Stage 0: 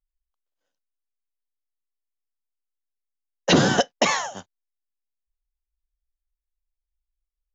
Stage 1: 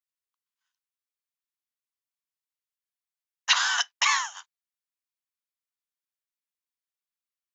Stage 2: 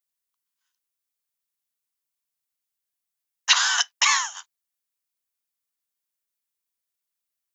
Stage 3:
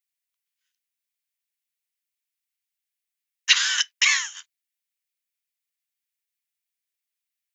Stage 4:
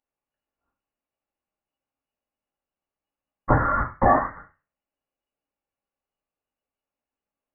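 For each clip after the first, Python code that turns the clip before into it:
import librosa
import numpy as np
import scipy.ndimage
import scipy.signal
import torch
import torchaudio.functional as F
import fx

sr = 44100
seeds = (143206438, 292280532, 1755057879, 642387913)

y1 = scipy.signal.sosfilt(scipy.signal.ellip(4, 1.0, 60, 1000.0, 'highpass', fs=sr, output='sos'), x)
y1 = y1 * librosa.db_to_amplitude(1.0)
y2 = fx.high_shelf(y1, sr, hz=5900.0, db=9.0)
y2 = y2 * librosa.db_to_amplitude(1.5)
y3 = fx.highpass_res(y2, sr, hz=2100.0, q=2.0)
y3 = y3 * librosa.db_to_amplitude(-2.5)
y4 = fx.room_shoebox(y3, sr, seeds[0], volume_m3=290.0, walls='furnished', distance_m=2.5)
y4 = fx.freq_invert(y4, sr, carrier_hz=2900)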